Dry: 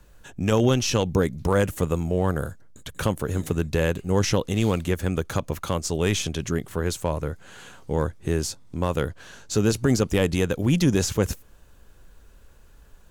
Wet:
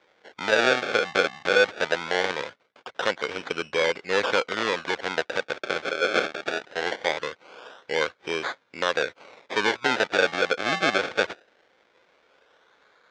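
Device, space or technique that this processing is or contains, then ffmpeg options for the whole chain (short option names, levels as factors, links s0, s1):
circuit-bent sampling toy: -filter_complex "[0:a]asplit=3[s0][s1][s2];[s0]afade=t=out:st=5.86:d=0.02[s3];[s1]bass=f=250:g=-11,treble=f=4000:g=11,afade=t=in:st=5.86:d=0.02,afade=t=out:st=6.61:d=0.02[s4];[s2]afade=t=in:st=6.61:d=0.02[s5];[s3][s4][s5]amix=inputs=3:normalize=0,acrusher=samples=31:mix=1:aa=0.000001:lfo=1:lforange=31:lforate=0.21,highpass=480,equalizer=f=500:t=q:w=4:g=5,equalizer=f=1500:t=q:w=4:g=8,equalizer=f=2200:t=q:w=4:g=7,equalizer=f=3500:t=q:w=4:g=6,lowpass=f=6000:w=0.5412,lowpass=f=6000:w=1.3066"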